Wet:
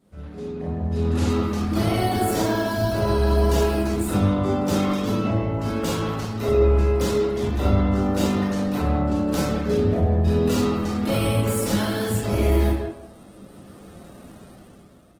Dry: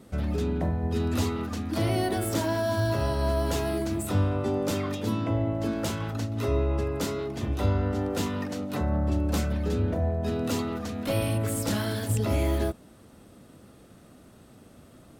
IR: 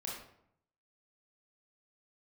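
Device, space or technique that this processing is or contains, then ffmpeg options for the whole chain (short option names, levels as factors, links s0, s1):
speakerphone in a meeting room: -filter_complex "[1:a]atrim=start_sample=2205[s0];[0:a][s0]afir=irnorm=-1:irlink=0,asplit=2[s1][s2];[s2]adelay=160,highpass=300,lowpass=3400,asoftclip=type=hard:threshold=0.0708,volume=0.447[s3];[s1][s3]amix=inputs=2:normalize=0,dynaudnorm=f=280:g=7:m=6.68,volume=0.447" -ar 48000 -c:a libopus -b:a 16k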